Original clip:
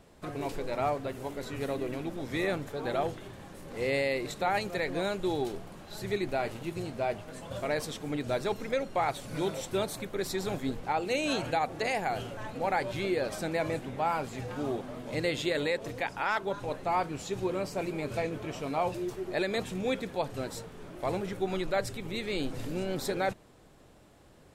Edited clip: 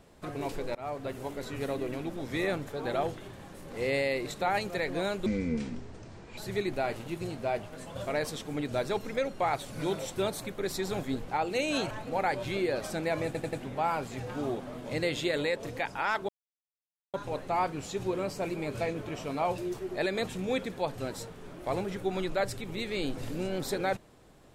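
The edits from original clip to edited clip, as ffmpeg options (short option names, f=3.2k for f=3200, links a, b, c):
-filter_complex "[0:a]asplit=9[a][b][c][d][e][f][g][h][i];[a]atrim=end=0.75,asetpts=PTS-STARTPTS,afade=t=out:st=0.746:d=0.004:c=hsin:silence=0.1[j];[b]atrim=start=0.75:end=5.264,asetpts=PTS-STARTPTS,afade=t=in:d=0.35:silence=0.1[k];[c]atrim=start=5.26:end=5.93,asetpts=PTS-STARTPTS,asetrate=26460,aresample=44100[l];[d]atrim=start=5.926:end=11.462[m];[e]atrim=start=12.388:end=13.832[n];[f]atrim=start=13.738:end=13.832[o];[g]atrim=start=13.738:end=13.832[p];[h]atrim=start=13.738:end=16.5,asetpts=PTS-STARTPTS,afade=t=out:st=2.758:d=0.004:c=hsin,apad=pad_dur=0.85[q];[i]atrim=start=16.5,asetpts=PTS-STARTPTS,afade=t=in:d=0.004:c=hsin[r];[j][k]concat=n=2:v=0:a=1[s];[s][l]acrossfade=d=0.004:c1=hsin:c2=hsin[t];[t][m]acrossfade=d=0.004:c1=hsin:c2=hsin[u];[u][n]acrossfade=d=0.004:c1=hsin:c2=hsin[v];[v][o]acrossfade=d=0.004:c1=hsin:c2=hsin[w];[w][p]acrossfade=d=0.004:c1=hsin:c2=hsin[x];[q][r]concat=n=2:v=0:a=1[y];[x][y]acrossfade=d=0.004:c1=hsin:c2=hsin"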